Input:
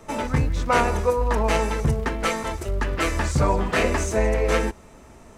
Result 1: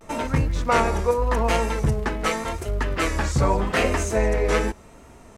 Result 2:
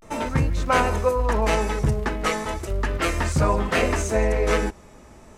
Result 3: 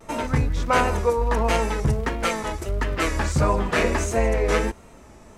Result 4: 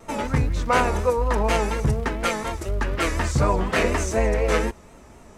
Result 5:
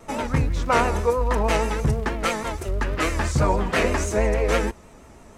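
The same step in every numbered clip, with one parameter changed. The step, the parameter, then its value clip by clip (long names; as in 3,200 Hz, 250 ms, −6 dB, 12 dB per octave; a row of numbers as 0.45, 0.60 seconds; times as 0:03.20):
pitch vibrato, speed: 0.84, 0.36, 1.5, 4.1, 6.2 Hertz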